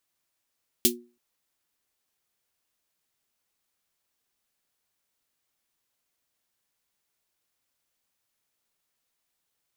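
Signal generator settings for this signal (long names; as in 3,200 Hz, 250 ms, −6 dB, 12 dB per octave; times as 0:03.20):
synth snare length 0.33 s, tones 240 Hz, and 360 Hz, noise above 2,900 Hz, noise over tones 9 dB, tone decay 0.35 s, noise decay 0.12 s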